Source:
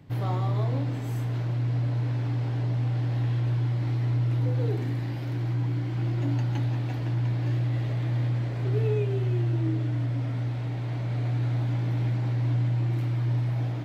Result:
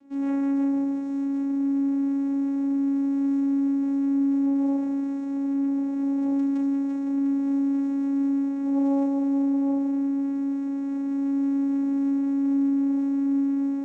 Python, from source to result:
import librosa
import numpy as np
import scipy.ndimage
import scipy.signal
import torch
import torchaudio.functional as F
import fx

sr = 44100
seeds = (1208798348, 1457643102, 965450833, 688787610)

y = fx.high_shelf(x, sr, hz=2000.0, db=6.0)
y = fx.vocoder(y, sr, bands=4, carrier='saw', carrier_hz=277.0)
y = fx.room_early_taps(y, sr, ms=(36, 50, 76), db=(-5.5, -14.0, -10.5))
y = y * 10.0 ** (-3.0 / 20.0)